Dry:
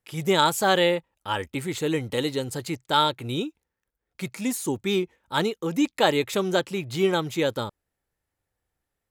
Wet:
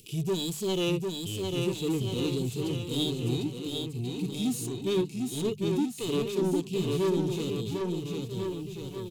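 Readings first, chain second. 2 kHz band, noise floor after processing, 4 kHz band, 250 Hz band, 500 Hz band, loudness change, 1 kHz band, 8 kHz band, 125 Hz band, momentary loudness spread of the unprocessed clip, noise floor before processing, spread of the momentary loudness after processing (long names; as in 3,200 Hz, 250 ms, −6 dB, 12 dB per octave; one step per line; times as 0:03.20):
−14.5 dB, −41 dBFS, −6.0 dB, −1.0 dB, −4.5 dB, −5.5 dB, −16.5 dB, −4.0 dB, +2.0 dB, 10 LU, −84 dBFS, 6 LU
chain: Chebyshev band-stop filter 430–2,600 Hz, order 4
mains-hum notches 50/100/150/200 Hz
in parallel at 0 dB: upward compression, threshold −27 dBFS
on the sum: soft clipping −22 dBFS, distortion −8 dB
harmonic and percussive parts rebalanced percussive −15 dB
on a send: bouncing-ball delay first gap 750 ms, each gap 0.85×, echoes 5
on the sum: level −1.5 dB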